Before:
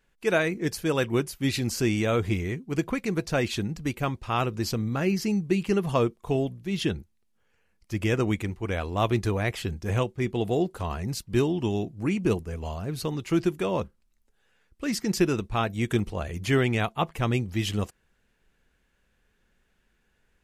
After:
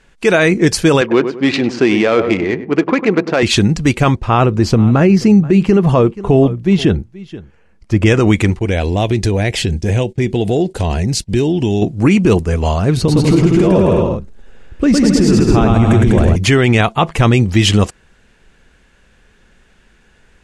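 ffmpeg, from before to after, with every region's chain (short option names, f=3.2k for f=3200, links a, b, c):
-filter_complex "[0:a]asettb=1/sr,asplit=3[a][b][c];[a]atrim=end=1.014[d];[b]atrim=start=1.01:end=3.43,asetpts=PTS-STARTPTS,afade=t=in:d=0.004:c=qsin,afade=t=out:st=2.416:d=0.004:c=qsin,adynamicsmooth=sensitivity=2.5:basefreq=1.5k,highpass=290,lowpass=7.3k,asplit=2[e][f];[f]adelay=100,lowpass=f=1.4k:p=1,volume=-11.5dB,asplit=2[g][h];[h]adelay=100,lowpass=f=1.4k:p=1,volume=0.35,asplit=2[i][j];[j]adelay=100,lowpass=f=1.4k:p=1,volume=0.35,asplit=2[k][l];[l]adelay=100,lowpass=f=1.4k:p=1,volume=0.35[m];[e][g][i][k][m]amix=inputs=5:normalize=0,atrim=end_sample=106722[n];[c]atrim=start=3.426[o];[d][n]acrossfade=d=0.004:c1=hsin:c2=qsin[p];[p][o]acrossfade=d=0.004:c1=qsin:c2=hsin,asettb=1/sr,asplit=3[q][r][s];[q]atrim=end=4.154[t];[r]atrim=start=4.15:end=8.06,asetpts=PTS-STARTPTS,afade=t=in:d=0.004:c=qsin,afade=t=out:st=3.906:d=0.004:c=qsin,highshelf=f=2k:g=-11.5,aecho=1:1:479:0.0891,atrim=end_sample=172431[u];[s]atrim=start=8.056[v];[t][u]acrossfade=d=0.004:c1=hsin:c2=qsin[w];[w][v]acrossfade=d=0.004:c1=qsin:c2=hsin,asettb=1/sr,asplit=3[x][y][z];[x]atrim=end=8.594[aa];[y]atrim=start=8.59:end=11.82,asetpts=PTS-STARTPTS,afade=t=in:d=0.004:c=qsin,afade=t=out:st=3.226:d=0.004:c=qsin,agate=range=-13dB:threshold=-46dB:ratio=16:release=100:detection=peak,equalizer=f=1.2k:t=o:w=0.58:g=-14.5,acompressor=threshold=-31dB:ratio=3:attack=3.2:release=140:knee=1:detection=peak[ab];[z]atrim=start=11.816[ac];[aa][ab]acrossfade=d=0.004:c1=hsin:c2=qsin[ad];[ad][ac]acrossfade=d=0.004:c1=qsin:c2=hsin,asettb=1/sr,asplit=3[ae][af][ag];[ae]atrim=end=12.974[ah];[af]atrim=start=12.97:end=16.36,asetpts=PTS-STARTPTS,afade=t=in:d=0.004:c=qsin,afade=t=out:st=3.386:d=0.004:c=qsin,tiltshelf=f=780:g=6.5,acompressor=threshold=-27dB:ratio=4:attack=3.2:release=140:knee=1:detection=peak,aecho=1:1:110|198|268.4|324.7|369.8:0.794|0.631|0.501|0.398|0.316,atrim=end_sample=149499[ai];[ag]atrim=start=16.356[aj];[ah][ai]acrossfade=d=0.004:c1=hsin:c2=qsin[ak];[ak][aj]acrossfade=d=0.004:c1=qsin:c2=hsin,lowpass=f=9.5k:w=0.5412,lowpass=f=9.5k:w=1.3066,alimiter=level_in=19.5dB:limit=-1dB:release=50:level=0:latency=1,volume=-1dB"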